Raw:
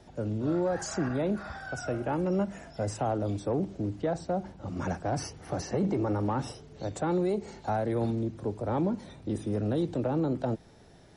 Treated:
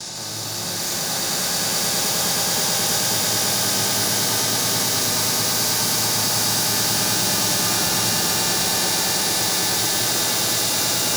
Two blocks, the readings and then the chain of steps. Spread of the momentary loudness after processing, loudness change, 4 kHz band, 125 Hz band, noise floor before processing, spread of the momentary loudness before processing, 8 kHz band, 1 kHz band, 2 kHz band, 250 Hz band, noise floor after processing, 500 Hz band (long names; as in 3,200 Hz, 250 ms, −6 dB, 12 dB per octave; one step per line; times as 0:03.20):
3 LU, +13.5 dB, +30.5 dB, +2.0 dB, −55 dBFS, 7 LU, +29.0 dB, +9.0 dB, +18.0 dB, 0.0 dB, −28 dBFS, +1.5 dB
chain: compressor on every frequency bin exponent 0.2
first-order pre-emphasis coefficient 0.97
notch filter 1,400 Hz, Q 7.7
noise gate with hold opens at −31 dBFS
octave-band graphic EQ 125/500/4,000/8,000 Hz +11/−6/+9/−4 dB
wave folding −32.5 dBFS
pitch vibrato 0.99 Hz 5.7 cents
on a send: echo that builds up and dies away 107 ms, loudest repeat 8, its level −5 dB
on the sum: reverb with rising layers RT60 3.2 s, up +12 semitones, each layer −2 dB, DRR 0 dB
level +7 dB